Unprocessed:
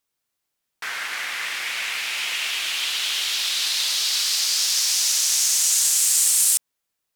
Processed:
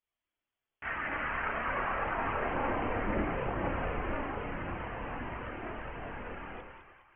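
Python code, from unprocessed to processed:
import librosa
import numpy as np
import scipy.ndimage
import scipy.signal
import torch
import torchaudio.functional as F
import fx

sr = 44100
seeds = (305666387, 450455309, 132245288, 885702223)

y = fx.freq_invert(x, sr, carrier_hz=3400)
y = fx.echo_split(y, sr, split_hz=800.0, low_ms=112, high_ms=207, feedback_pct=52, wet_db=-5)
y = fx.chorus_voices(y, sr, voices=4, hz=0.33, base_ms=30, depth_ms=2.3, mix_pct=60)
y = y * librosa.db_to_amplitude(-3.5)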